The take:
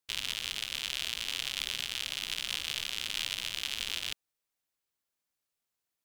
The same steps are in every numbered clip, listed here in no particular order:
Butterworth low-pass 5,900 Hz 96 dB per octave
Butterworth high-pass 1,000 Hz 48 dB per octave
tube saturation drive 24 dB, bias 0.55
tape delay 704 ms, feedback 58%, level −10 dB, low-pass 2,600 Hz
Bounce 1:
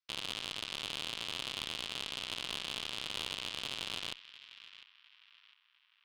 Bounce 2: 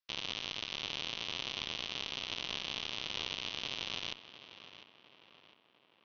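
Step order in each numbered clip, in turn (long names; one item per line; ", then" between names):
Butterworth low-pass, then tape delay, then Butterworth high-pass, then tube saturation
Butterworth high-pass, then tube saturation, then tape delay, then Butterworth low-pass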